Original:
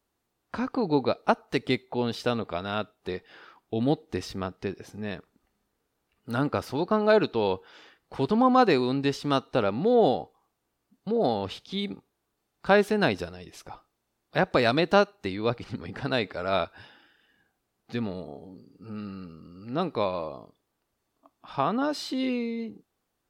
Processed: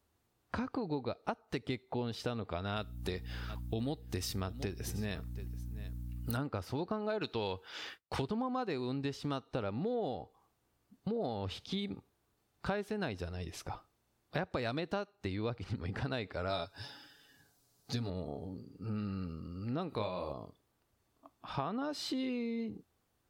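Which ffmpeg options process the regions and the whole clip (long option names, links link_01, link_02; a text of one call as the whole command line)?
ffmpeg -i in.wav -filter_complex "[0:a]asettb=1/sr,asplit=3[link_01][link_02][link_03];[link_01]atrim=end=2.764[link_04];[link_02]atrim=start=2.76:end=6.37,asetpts=PTS-STARTPTS,afade=type=in:duration=0.004:curve=qsin,afade=type=out:start_time=3.606:duration=0.004:curve=qsin,aemphasis=mode=production:type=75fm,aecho=1:1:731:0.0891,atrim=end_sample=159201,aeval=exprs='val(0)+0.00562*(sin(2*PI*60*n/s)+sin(2*PI*2*60*n/s)/2+sin(2*PI*3*60*n/s)/3+sin(2*PI*4*60*n/s)/4+sin(2*PI*5*60*n/s)/5)':channel_layout=same[link_05];[link_03]atrim=start=6.366[link_06];[link_04][link_05]acrossfade=duration=0.004:curve1=hsin:curve2=qsin[link_07];[link_07][link_06]acrossfade=duration=0.004:curve1=qsin:curve2=hsin,asettb=1/sr,asplit=3[link_08][link_09][link_10];[link_08]atrim=end=7.214[link_11];[link_09]atrim=start=7.21:end=8.22,asetpts=PTS-STARTPTS,afade=type=in:duration=0.004:curve=qsin,afade=type=out:start_time=1.006:duration=0.004:curve=qsin,agate=range=-33dB:threshold=-56dB:ratio=3:release=100:detection=peak,tiltshelf=frequency=1400:gain=-5,acontrast=74[link_12];[link_10]atrim=start=8.216[link_13];[link_11][link_12]acrossfade=duration=0.004:curve1=hsin:curve2=qsin[link_14];[link_14][link_13]acrossfade=duration=0.004:curve1=qsin:curve2=hsin,asettb=1/sr,asplit=3[link_15][link_16][link_17];[link_15]atrim=end=16.494[link_18];[link_16]atrim=start=16.49:end=18.1,asetpts=PTS-STARTPTS,afade=type=in:duration=0.004:curve=qsin,afade=type=out:start_time=1.606:duration=0.004:curve=qsin,highshelf=frequency=3600:width_type=q:width=1.5:gain=9.5,aecho=1:1:7.1:0.64,atrim=end_sample=71001[link_19];[link_17]atrim=start=18.096[link_20];[link_18][link_19]acrossfade=duration=0.004:curve1=hsin:curve2=qsin[link_21];[link_21][link_20]acrossfade=duration=0.004:curve1=qsin:curve2=hsin,asettb=1/sr,asplit=3[link_22][link_23][link_24];[link_22]atrim=end=19.894[link_25];[link_23]atrim=start=19.89:end=20.33,asetpts=PTS-STARTPTS,afade=type=in:duration=0.004:curve=qsin,afade=type=out:start_time=0.436:duration=0.004:curve=qsin,highshelf=frequency=4500:gain=9.5,bandreject=frequency=5300:width=5.5,asplit=2[link_26][link_27];[link_27]adelay=28,volume=-4dB[link_28];[link_26][link_28]amix=inputs=2:normalize=0,atrim=end_sample=19404[link_29];[link_24]atrim=start=20.326[link_30];[link_25][link_29]acrossfade=duration=0.004:curve1=hsin:curve2=qsin[link_31];[link_31][link_30]acrossfade=duration=0.004:curve1=qsin:curve2=hsin,equalizer=frequency=86:width_type=o:width=1.1:gain=10,acompressor=threshold=-34dB:ratio=6" out.wav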